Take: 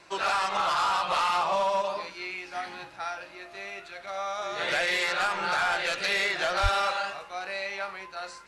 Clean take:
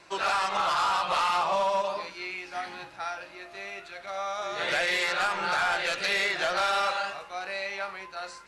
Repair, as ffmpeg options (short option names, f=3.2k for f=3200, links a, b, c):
-filter_complex "[0:a]asplit=3[a][b][c];[a]afade=t=out:st=6.62:d=0.02[d];[b]highpass=f=140:w=0.5412,highpass=f=140:w=1.3066,afade=t=in:st=6.62:d=0.02,afade=t=out:st=6.74:d=0.02[e];[c]afade=t=in:st=6.74:d=0.02[f];[d][e][f]amix=inputs=3:normalize=0"